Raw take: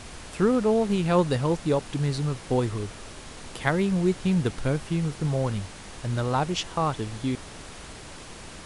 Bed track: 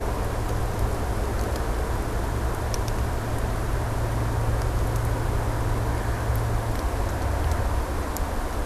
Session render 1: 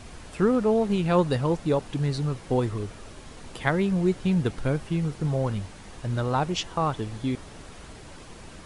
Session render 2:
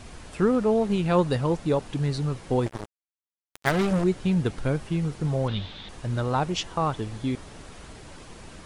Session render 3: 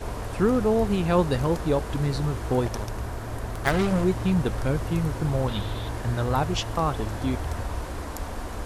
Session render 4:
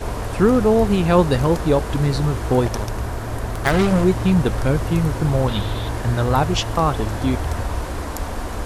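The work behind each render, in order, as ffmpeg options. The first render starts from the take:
-af "afftdn=nr=6:nf=-43"
-filter_complex "[0:a]asettb=1/sr,asplit=3[a][b][c];[a]atrim=end=2.664[d];[b]atrim=start=2.66:end=4.04,asetpts=PTS-STARTPTS,afade=t=in:d=0.004:c=qsin,afade=t=out:st=1.376:d=0.004:c=qsin,acrusher=bits=3:mix=0:aa=0.5[e];[c]atrim=start=4.036[f];[d][e]acrossfade=d=0.004:c1=hsin:c2=qsin[g];[g][f]acrossfade=d=0.004:c1=qsin:c2=hsin,asettb=1/sr,asplit=3[h][i][j];[h]atrim=end=5.484[k];[i]atrim=start=5.48:end=5.89,asetpts=PTS-STARTPTS,afade=t=in:d=0.004:c=qsin,afade=t=out:st=0.406:d=0.004:c=qsin,lowpass=f=3.6k:t=q:w=8.5[l];[j]atrim=start=5.886[m];[k][l]acrossfade=d=0.004:c1=hsin:c2=qsin[n];[n][m]acrossfade=d=0.004:c1=qsin:c2=hsin"
-filter_complex "[1:a]volume=-6dB[a];[0:a][a]amix=inputs=2:normalize=0"
-af "volume=6.5dB,alimiter=limit=-3dB:level=0:latency=1"

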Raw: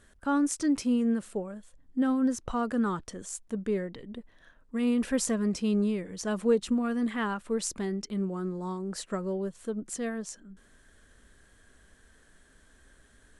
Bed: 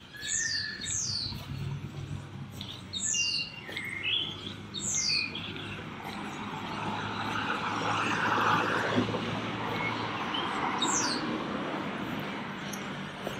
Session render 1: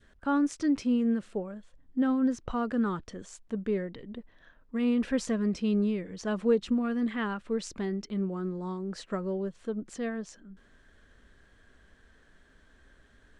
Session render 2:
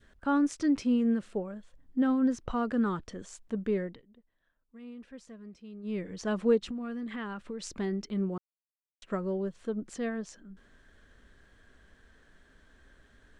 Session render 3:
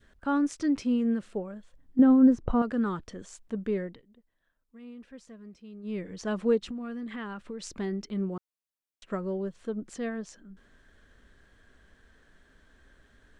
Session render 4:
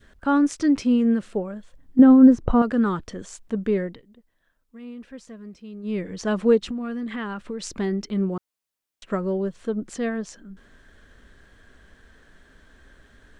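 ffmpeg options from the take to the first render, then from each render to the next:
-af "lowpass=4.4k,adynamicequalizer=threshold=0.00447:dfrequency=910:dqfactor=1.2:tfrequency=910:tqfactor=1.2:attack=5:release=100:ratio=0.375:range=2:mode=cutabove:tftype=bell"
-filter_complex "[0:a]asplit=3[a][b][c];[a]afade=t=out:st=6.57:d=0.02[d];[b]acompressor=threshold=-34dB:ratio=6:attack=3.2:release=140:knee=1:detection=peak,afade=t=in:st=6.57:d=0.02,afade=t=out:st=7.74:d=0.02[e];[c]afade=t=in:st=7.74:d=0.02[f];[d][e][f]amix=inputs=3:normalize=0,asplit=5[g][h][i][j][k];[g]atrim=end=4.02,asetpts=PTS-STARTPTS,afade=t=out:st=3.87:d=0.15:silence=0.112202[l];[h]atrim=start=4.02:end=5.83,asetpts=PTS-STARTPTS,volume=-19dB[m];[i]atrim=start=5.83:end=8.38,asetpts=PTS-STARTPTS,afade=t=in:d=0.15:silence=0.112202,afade=t=out:st=2.546:d=0.004:c=hsin[n];[j]atrim=start=8.38:end=9.02,asetpts=PTS-STARTPTS,volume=0[o];[k]atrim=start=9.02,asetpts=PTS-STARTPTS,afade=t=in:d=0.004:c=hsin[p];[l][m][n][o][p]concat=n=5:v=0:a=1"
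-filter_complex "[0:a]asettb=1/sr,asplit=3[a][b][c];[a]atrim=end=1.994[d];[b]atrim=start=1.99:end=2.62,asetpts=PTS-STARTPTS,afade=t=in:d=0.004:c=qsin,afade=t=out:st=0.626:d=0.004:c=qsin,tiltshelf=f=1.3k:g=8.5[e];[c]atrim=start=2.616[f];[d][e]acrossfade=d=0.004:c1=hsin:c2=qsin[g];[g][f]acrossfade=d=0.004:c1=qsin:c2=hsin"
-af "volume=7dB"

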